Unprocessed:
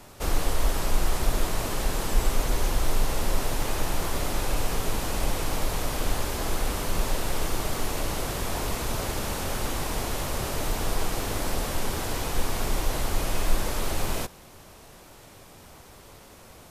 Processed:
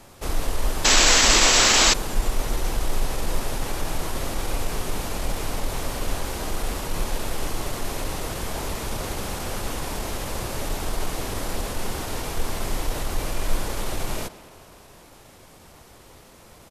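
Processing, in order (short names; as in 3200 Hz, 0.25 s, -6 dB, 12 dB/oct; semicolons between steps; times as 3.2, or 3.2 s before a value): tape echo 97 ms, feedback 85%, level -18 dB, low-pass 5500 Hz; painted sound noise, 0.83–1.92, 220–8500 Hz -17 dBFS; pitch shift -1 st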